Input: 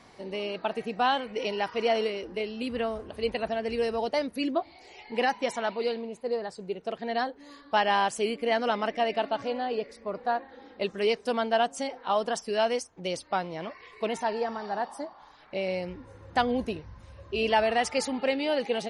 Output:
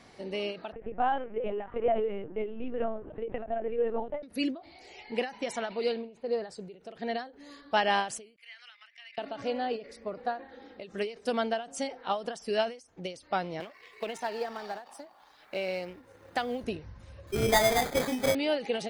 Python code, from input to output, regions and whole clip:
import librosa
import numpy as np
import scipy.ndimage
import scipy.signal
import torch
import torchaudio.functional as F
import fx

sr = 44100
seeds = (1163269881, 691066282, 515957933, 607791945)

y = fx.chain(x, sr, fx.lowpass(hz=1400.0, slope=12),
    fx.lpc_vocoder(seeds[0], excitation='pitch_kept', order=10), at=(0.72, 4.23))
y = fx.chain(y, sr, fx.lowpass(hz=4700.0, slope=12),
    fx.notch(hz=2000.0, q=21.0), at=(5.92, 6.37))
y = fx.chain(y, sr, fx.level_steps(step_db=11),
    fx.ladder_highpass(hz=1600.0, resonance_pct=35), at=(8.36, 9.18))
y = fx.chain(y, sr, fx.law_mismatch(coded='A'),
    fx.low_shelf(hz=220.0, db=-11.0),
    fx.band_squash(depth_pct=40), at=(13.6, 16.64))
y = fx.chain(y, sr, fx.doubler(ms=24.0, db=-5),
    fx.sample_hold(seeds[1], rate_hz=2800.0, jitter_pct=0), at=(17.27, 18.35))
y = fx.peak_eq(y, sr, hz=1000.0, db=-5.5, octaves=0.41)
y = fx.end_taper(y, sr, db_per_s=150.0)